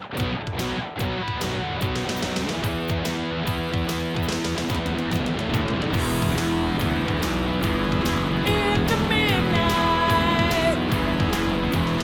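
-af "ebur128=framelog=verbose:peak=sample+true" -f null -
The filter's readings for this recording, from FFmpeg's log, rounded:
Integrated loudness:
  I:         -23.3 LUFS
  Threshold: -33.2 LUFS
Loudness range:
  LRA:         5.3 LU
  Threshold: -43.2 LUFS
  LRA low:   -26.0 LUFS
  LRA high:  -20.8 LUFS
Sample peak:
  Peak:       -8.5 dBFS
True peak:
  Peak:       -8.5 dBFS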